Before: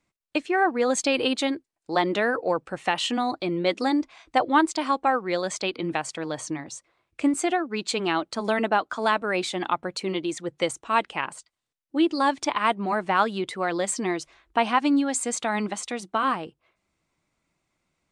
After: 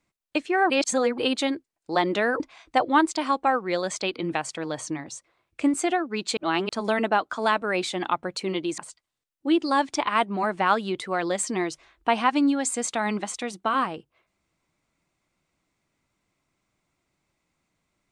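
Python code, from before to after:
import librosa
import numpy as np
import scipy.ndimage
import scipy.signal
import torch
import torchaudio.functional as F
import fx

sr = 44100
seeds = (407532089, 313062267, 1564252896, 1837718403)

y = fx.edit(x, sr, fx.reverse_span(start_s=0.7, length_s=0.48),
    fx.cut(start_s=2.4, length_s=1.6),
    fx.reverse_span(start_s=7.97, length_s=0.32),
    fx.cut(start_s=10.38, length_s=0.89), tone=tone)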